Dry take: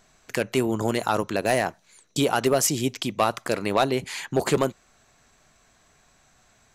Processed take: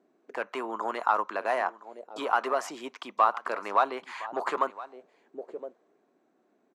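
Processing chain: HPF 210 Hz 24 dB/oct; in parallel at -10 dB: hard clip -19.5 dBFS, distortion -10 dB; on the sum: echo 1.015 s -17.5 dB; auto-wah 320–1100 Hz, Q 2.9, up, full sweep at -26 dBFS; gain +3.5 dB

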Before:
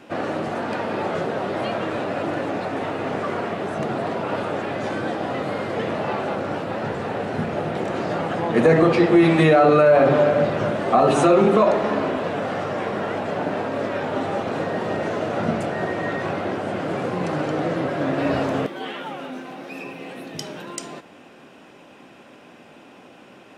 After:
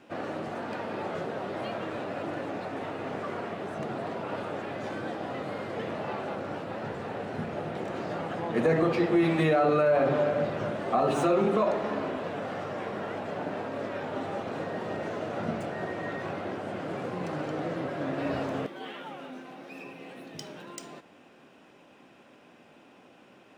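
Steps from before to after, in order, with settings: median filter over 3 samples; gain -9 dB

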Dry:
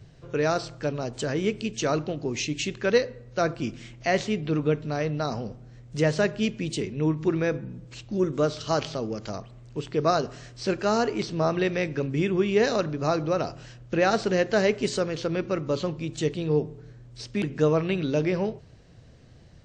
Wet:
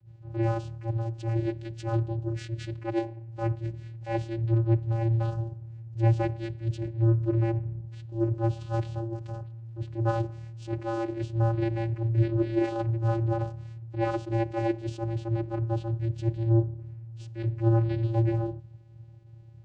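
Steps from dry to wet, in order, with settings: vocoder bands 8, square 114 Hz; attack slew limiter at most 200 dB/s

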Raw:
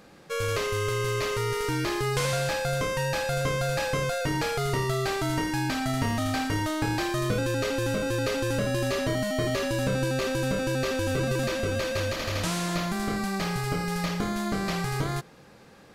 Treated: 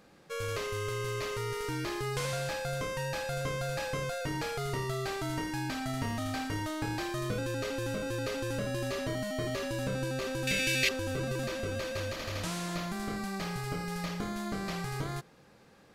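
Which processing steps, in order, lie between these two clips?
10.47–10.89 resonant high shelf 1600 Hz +11.5 dB, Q 3; gain -7 dB

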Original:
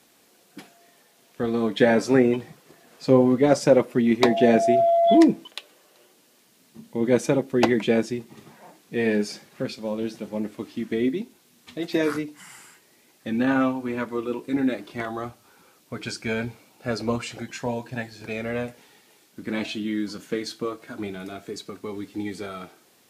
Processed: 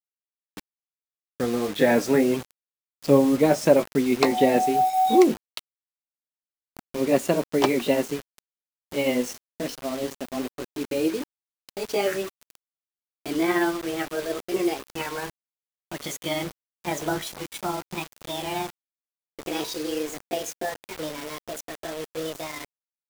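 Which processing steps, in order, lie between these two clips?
gliding pitch shift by +8 st starting unshifted; bit-crush 6-bit

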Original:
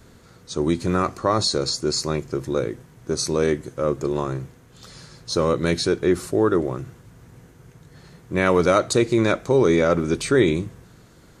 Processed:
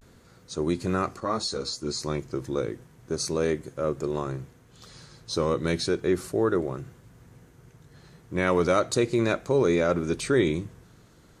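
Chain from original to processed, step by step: vibrato 0.34 Hz 48 cents; 1.2–2.01 ensemble effect; gain -5 dB

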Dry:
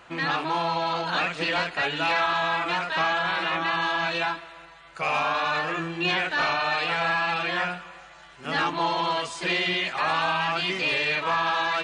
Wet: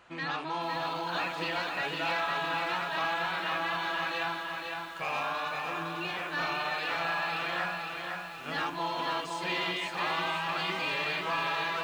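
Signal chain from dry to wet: 5.47–6.34 compressor, threshold -26 dBFS, peak gain reduction 5 dB; lo-fi delay 0.509 s, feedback 55%, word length 8-bit, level -4 dB; gain -8 dB

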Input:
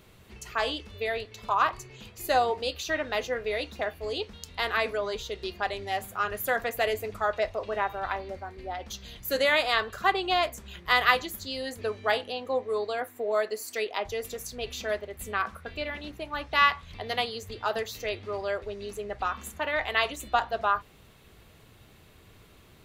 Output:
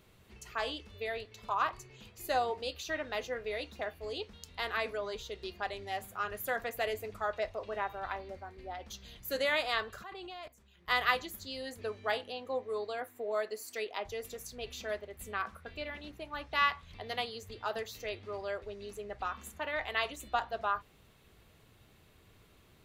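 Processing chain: 10.03–10.88 level quantiser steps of 19 dB; gain -7 dB

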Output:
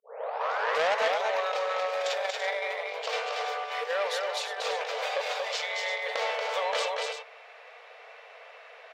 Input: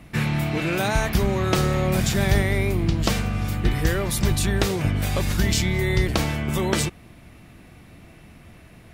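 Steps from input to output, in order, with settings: tape start at the beginning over 0.98 s; dynamic EQ 1700 Hz, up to -5 dB, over -43 dBFS, Q 1.2; negative-ratio compressor -23 dBFS, ratio -0.5; brick-wall FIR high-pass 430 Hz; air absorption 190 m; tapped delay 0.233/0.335 s -4/-9.5 dB; core saturation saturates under 2200 Hz; gain +3.5 dB

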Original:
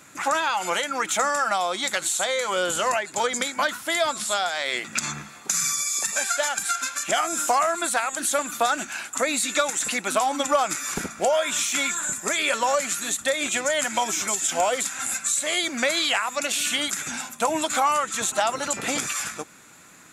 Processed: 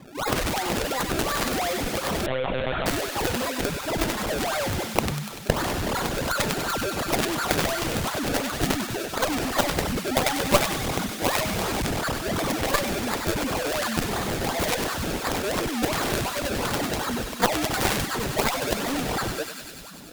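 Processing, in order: spectral contrast raised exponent 3.3; in parallel at -3 dB: vocal rider 0.5 s; on the sum: decimation with a swept rate 30×, swing 100% 2.8 Hz; on a send: thinning echo 97 ms, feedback 82%, high-pass 1200 Hz, level -6.5 dB; on the sum: added harmonics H 6 -11 dB, 7 -9 dB, 8 -15 dB, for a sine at -4 dBFS; 2.26–2.86 monotone LPC vocoder at 8 kHz 130 Hz; gain -3.5 dB

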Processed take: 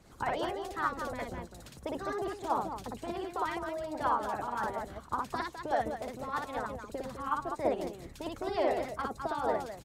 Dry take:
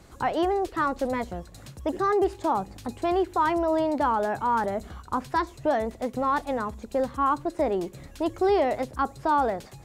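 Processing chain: on a send: loudspeakers at several distances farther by 20 m -1 dB, 71 m -8 dB; on the sum: harmonic-percussive split harmonic -14 dB; gain -3 dB

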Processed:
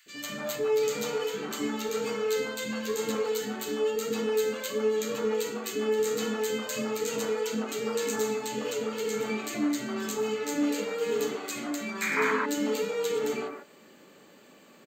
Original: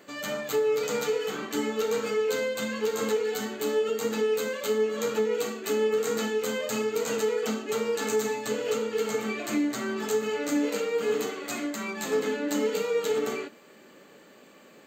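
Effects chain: painted sound noise, 12.01–12.31, 900–2500 Hz -25 dBFS; three bands offset in time highs, lows, mids 60/150 ms, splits 490/1700 Hz

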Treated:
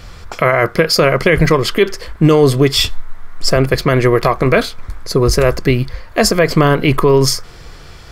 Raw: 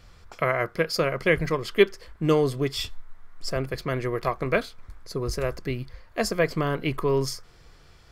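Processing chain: maximiser +18 dB; gain -1 dB

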